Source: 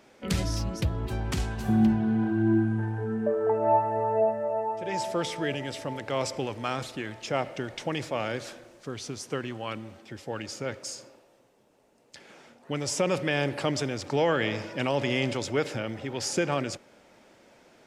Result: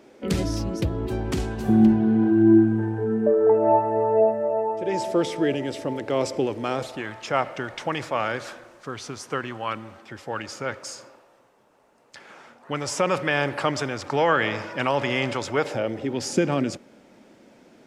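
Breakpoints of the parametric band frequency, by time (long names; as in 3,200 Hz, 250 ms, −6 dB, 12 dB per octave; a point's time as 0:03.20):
parametric band +10 dB 1.5 octaves
0:06.66 350 Hz
0:07.11 1,200 Hz
0:15.52 1,200 Hz
0:16.18 240 Hz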